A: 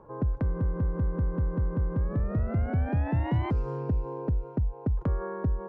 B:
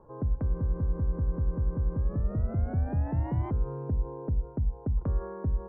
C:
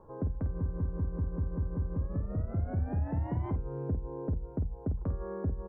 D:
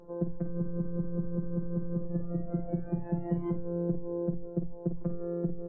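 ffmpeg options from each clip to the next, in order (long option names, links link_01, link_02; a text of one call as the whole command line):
ffmpeg -i in.wav -af "lowpass=1300,lowshelf=frequency=69:gain=8.5,bandreject=frequency=60:width_type=h:width=6,bandreject=frequency=120:width_type=h:width=6,bandreject=frequency=180:width_type=h:width=6,bandreject=frequency=240:width_type=h:width=6,volume=-4dB" out.wav
ffmpeg -i in.wav -filter_complex "[0:a]acompressor=threshold=-29dB:ratio=6,asplit=2[link_01][link_02];[link_02]aecho=0:1:11|51:0.316|0.355[link_03];[link_01][link_03]amix=inputs=2:normalize=0" out.wav
ffmpeg -i in.wav -af "afftfilt=real='hypot(re,im)*cos(PI*b)':imag='0':win_size=1024:overlap=0.75,lowshelf=frequency=680:width_type=q:width=1.5:gain=7" -ar 16000 -c:a libvorbis -b:a 64k out.ogg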